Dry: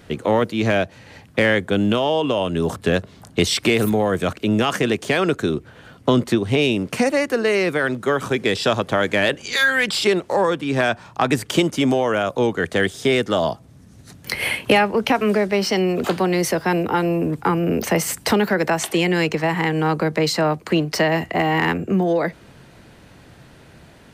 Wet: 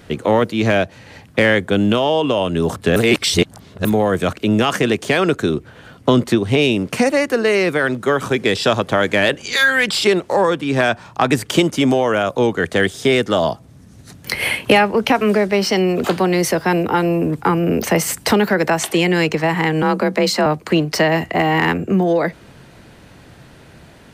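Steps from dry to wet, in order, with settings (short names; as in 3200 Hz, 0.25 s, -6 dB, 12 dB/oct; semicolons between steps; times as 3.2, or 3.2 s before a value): 2.96–3.85 reverse; 19.82–20.46 frequency shift +33 Hz; gain +3 dB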